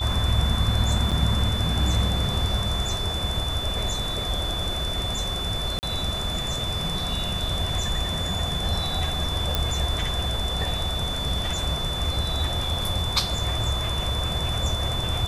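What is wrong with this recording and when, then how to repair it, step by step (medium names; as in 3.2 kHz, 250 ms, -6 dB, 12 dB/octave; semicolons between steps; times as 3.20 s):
whine 3.5 kHz -29 dBFS
1.11–1.12 s: dropout 6.6 ms
5.79–5.83 s: dropout 39 ms
9.55 s: pop -7 dBFS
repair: de-click; band-stop 3.5 kHz, Q 30; interpolate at 1.11 s, 6.6 ms; interpolate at 5.79 s, 39 ms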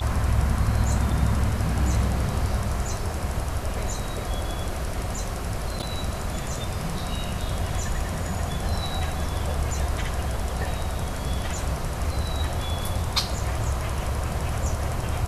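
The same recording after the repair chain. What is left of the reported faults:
nothing left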